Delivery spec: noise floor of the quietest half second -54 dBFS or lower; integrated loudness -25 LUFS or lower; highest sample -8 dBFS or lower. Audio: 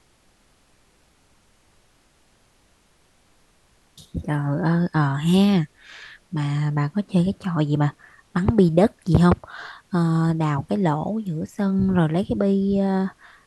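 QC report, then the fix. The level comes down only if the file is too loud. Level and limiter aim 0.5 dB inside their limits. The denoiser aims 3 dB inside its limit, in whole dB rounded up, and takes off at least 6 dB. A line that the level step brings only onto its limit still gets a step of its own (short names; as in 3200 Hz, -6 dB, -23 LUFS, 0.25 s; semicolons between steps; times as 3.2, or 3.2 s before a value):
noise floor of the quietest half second -60 dBFS: OK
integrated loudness -21.5 LUFS: fail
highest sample -2.5 dBFS: fail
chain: gain -4 dB; limiter -8.5 dBFS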